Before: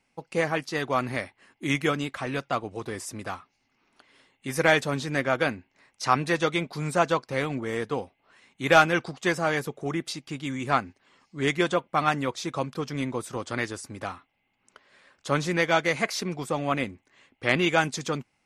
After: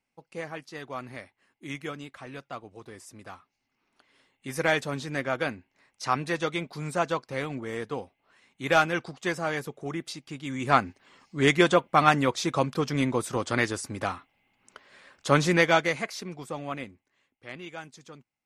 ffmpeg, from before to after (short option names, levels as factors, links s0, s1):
-af "volume=1.58,afade=t=in:st=3.1:d=1.37:silence=0.446684,afade=t=in:st=10.44:d=0.4:silence=0.398107,afade=t=out:st=15.53:d=0.54:silence=0.281838,afade=t=out:st=16.58:d=0.87:silence=0.281838"